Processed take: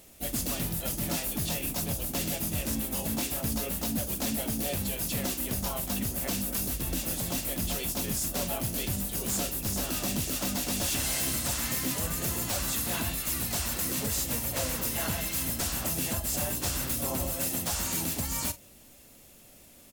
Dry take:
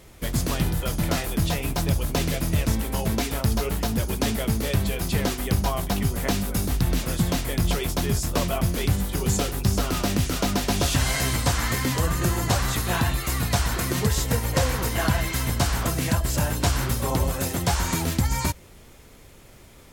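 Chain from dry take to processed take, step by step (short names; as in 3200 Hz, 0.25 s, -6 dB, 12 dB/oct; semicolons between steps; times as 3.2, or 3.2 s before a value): pre-emphasis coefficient 0.8; small resonant body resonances 230/570/2700 Hz, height 10 dB, ringing for 30 ms; wavefolder -25 dBFS; harmoniser -7 st -15 dB, +4 st -6 dB; doubler 42 ms -14 dB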